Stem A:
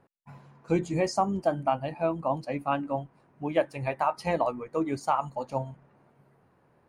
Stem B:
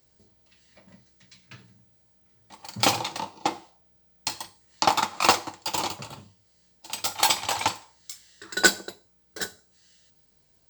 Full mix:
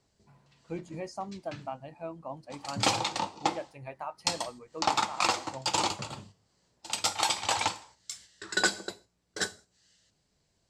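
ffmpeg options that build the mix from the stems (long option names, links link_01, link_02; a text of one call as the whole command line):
ffmpeg -i stem1.wav -i stem2.wav -filter_complex "[0:a]volume=-12dB[link_01];[1:a]lowpass=frequency=9900:width=0.5412,lowpass=frequency=9900:width=1.3066,agate=range=-6dB:threshold=-53dB:ratio=16:detection=peak,volume=1dB[link_02];[link_01][link_02]amix=inputs=2:normalize=0,alimiter=limit=-12dB:level=0:latency=1:release=248" out.wav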